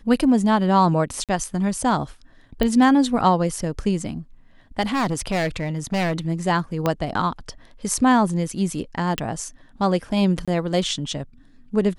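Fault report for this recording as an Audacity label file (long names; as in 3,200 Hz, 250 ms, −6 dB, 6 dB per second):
1.240000	1.290000	drop-out 47 ms
2.630000	2.630000	click −9 dBFS
4.810000	6.130000	clipping −18.5 dBFS
6.860000	6.860000	click −8 dBFS
9.180000	9.180000	click
10.450000	10.480000	drop-out 26 ms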